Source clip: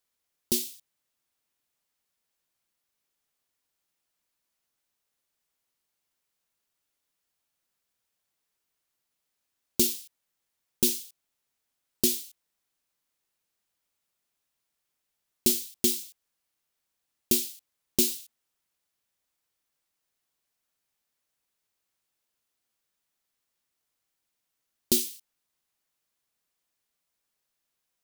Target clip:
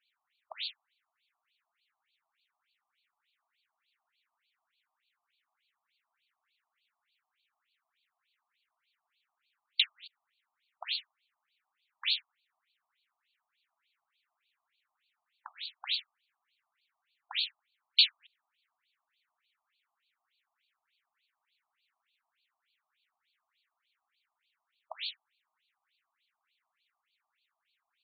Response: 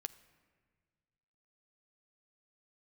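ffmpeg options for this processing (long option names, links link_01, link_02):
-af "acontrast=24,highshelf=frequency=6100:gain=11.5,afftfilt=real='re*between(b*sr/1024,860*pow(3300/860,0.5+0.5*sin(2*PI*3.4*pts/sr))/1.41,860*pow(3300/860,0.5+0.5*sin(2*PI*3.4*pts/sr))*1.41)':imag='im*between(b*sr/1024,860*pow(3300/860,0.5+0.5*sin(2*PI*3.4*pts/sr))/1.41,860*pow(3300/860,0.5+0.5*sin(2*PI*3.4*pts/sr))*1.41)':win_size=1024:overlap=0.75,volume=5.5dB"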